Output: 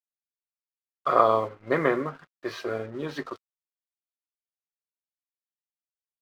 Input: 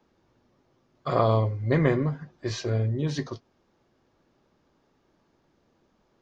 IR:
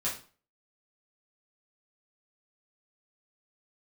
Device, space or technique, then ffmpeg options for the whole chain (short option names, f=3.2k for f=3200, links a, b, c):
pocket radio on a weak battery: -af "highpass=350,lowpass=3.2k,aeval=exprs='sgn(val(0))*max(abs(val(0))-0.00237,0)':c=same,equalizer=f=1.3k:t=o:w=0.34:g=10,volume=2.5dB"